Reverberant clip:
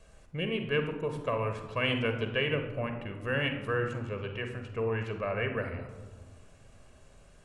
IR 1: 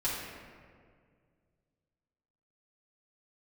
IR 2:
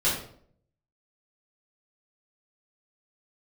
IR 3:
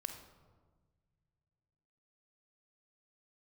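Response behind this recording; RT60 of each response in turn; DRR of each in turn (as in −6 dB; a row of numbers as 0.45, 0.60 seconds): 3; 2.0, 0.60, 1.5 seconds; −10.0, −10.5, 5.5 decibels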